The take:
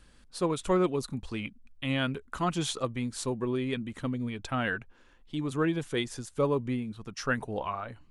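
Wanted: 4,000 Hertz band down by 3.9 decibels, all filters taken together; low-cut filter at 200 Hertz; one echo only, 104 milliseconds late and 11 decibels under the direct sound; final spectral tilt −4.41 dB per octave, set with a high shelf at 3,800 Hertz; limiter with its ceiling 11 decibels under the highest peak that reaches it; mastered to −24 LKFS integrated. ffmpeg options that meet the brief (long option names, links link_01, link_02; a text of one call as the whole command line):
ffmpeg -i in.wav -af "highpass=200,highshelf=frequency=3800:gain=3,equalizer=frequency=4000:width_type=o:gain=-7,alimiter=level_in=2dB:limit=-24dB:level=0:latency=1,volume=-2dB,aecho=1:1:104:0.282,volume=13dB" out.wav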